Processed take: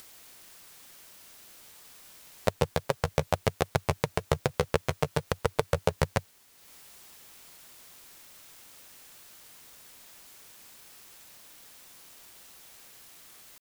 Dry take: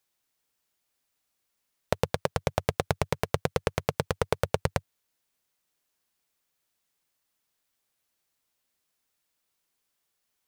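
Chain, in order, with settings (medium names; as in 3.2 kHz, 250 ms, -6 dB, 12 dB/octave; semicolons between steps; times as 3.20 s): tempo 0.77×; word length cut 10-bit, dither triangular; upward compressor, threshold -42 dBFS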